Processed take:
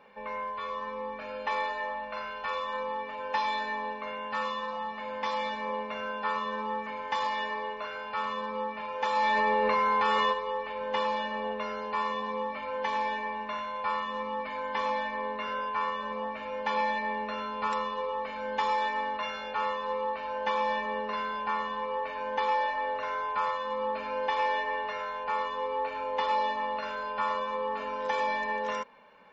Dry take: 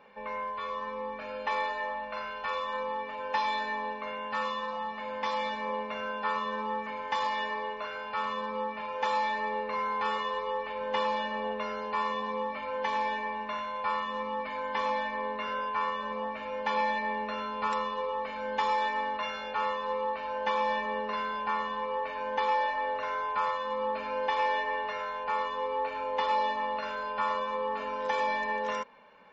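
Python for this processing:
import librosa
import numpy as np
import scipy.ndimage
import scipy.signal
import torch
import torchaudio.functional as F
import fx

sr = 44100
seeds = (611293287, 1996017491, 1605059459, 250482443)

y = fx.env_flatten(x, sr, amount_pct=100, at=(9.15, 10.32), fade=0.02)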